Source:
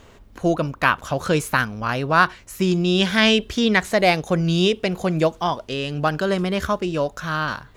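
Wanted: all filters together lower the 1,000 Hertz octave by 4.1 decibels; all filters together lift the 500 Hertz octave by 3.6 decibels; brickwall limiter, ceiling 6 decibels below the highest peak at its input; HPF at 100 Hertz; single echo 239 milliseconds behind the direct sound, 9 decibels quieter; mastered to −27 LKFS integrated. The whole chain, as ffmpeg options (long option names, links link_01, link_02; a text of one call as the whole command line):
ffmpeg -i in.wav -af "highpass=100,equalizer=frequency=500:width_type=o:gain=7,equalizer=frequency=1000:width_type=o:gain=-8.5,alimiter=limit=-9dB:level=0:latency=1,aecho=1:1:239:0.355,volume=-6dB" out.wav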